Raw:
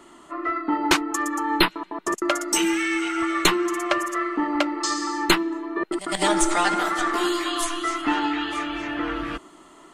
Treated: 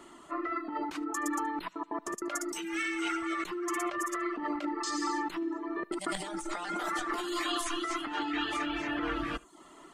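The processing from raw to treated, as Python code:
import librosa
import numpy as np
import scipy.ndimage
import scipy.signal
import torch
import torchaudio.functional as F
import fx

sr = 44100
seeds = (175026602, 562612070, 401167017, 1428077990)

y = fx.dereverb_blind(x, sr, rt60_s=0.52)
y = fx.over_compress(y, sr, threshold_db=-28.0, ratio=-1.0)
y = y + 10.0 ** (-23.5 / 20.0) * np.pad(y, (int(74 * sr / 1000.0), 0))[:len(y)]
y = y * librosa.db_to_amplitude(-6.0)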